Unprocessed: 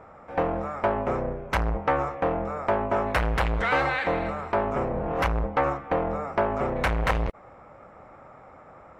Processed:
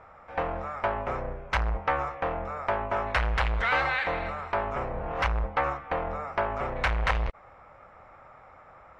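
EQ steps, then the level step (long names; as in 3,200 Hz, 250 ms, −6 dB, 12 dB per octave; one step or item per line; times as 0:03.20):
low-pass filter 5,500 Hz 12 dB per octave
parametric band 260 Hz −12 dB 2.6 octaves
+1.5 dB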